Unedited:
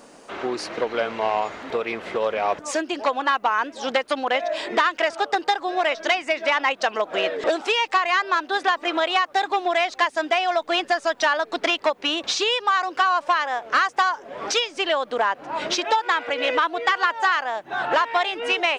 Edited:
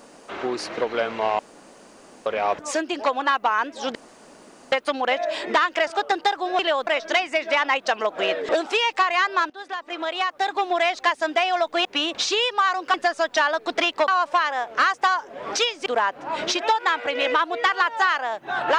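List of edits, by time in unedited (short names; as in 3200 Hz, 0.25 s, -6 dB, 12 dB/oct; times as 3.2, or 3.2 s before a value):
1.39–2.26 room tone
3.95 insert room tone 0.77 s
8.45–9.68 fade in, from -17.5 dB
11.94–13.03 move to 10.8
14.81–15.09 move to 5.82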